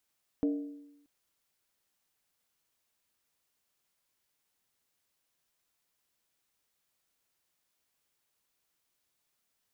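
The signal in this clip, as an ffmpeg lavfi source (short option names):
-f lavfi -i "aevalsrc='0.0631*pow(10,-3*t/0.92)*sin(2*PI*288*t)+0.0224*pow(10,-3*t/0.729)*sin(2*PI*459.1*t)+0.00794*pow(10,-3*t/0.629)*sin(2*PI*615.2*t)+0.00282*pow(10,-3*t/0.607)*sin(2*PI*661.2*t)+0.001*pow(10,-3*t/0.565)*sin(2*PI*764.1*t)':d=0.63:s=44100"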